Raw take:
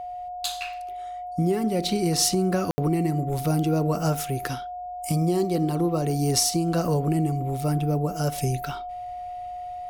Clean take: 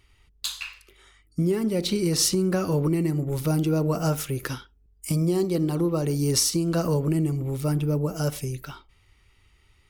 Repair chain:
notch filter 720 Hz, Q 30
ambience match 0:02.71–0:02.78
level 0 dB, from 0:08.38 −5 dB

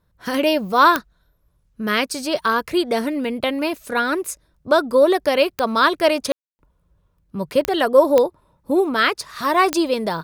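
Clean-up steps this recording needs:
click removal
ambience match 0:06.32–0:06.59

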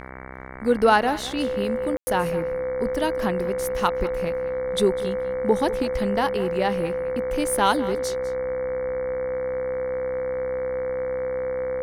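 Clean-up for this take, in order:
hum removal 64.8 Hz, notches 35
notch filter 510 Hz, Q 30
ambience match 0:01.97–0:02.07
echo removal 201 ms −17 dB

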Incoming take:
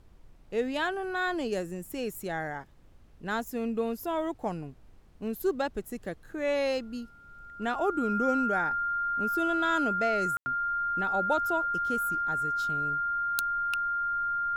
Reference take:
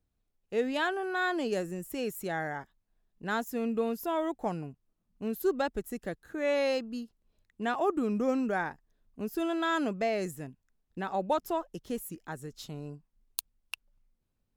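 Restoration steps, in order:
notch filter 1,400 Hz, Q 30
ambience match 0:10.37–0:10.46
noise reduction from a noise print 23 dB

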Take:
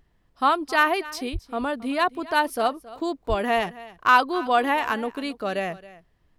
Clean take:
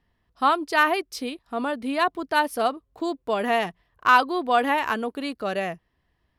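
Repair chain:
0:01.32–0:01.44: high-pass filter 140 Hz 24 dB per octave
0:03.28–0:03.40: high-pass filter 140 Hz 24 dB per octave
downward expander −54 dBFS, range −21 dB
echo removal 271 ms −18.5 dB

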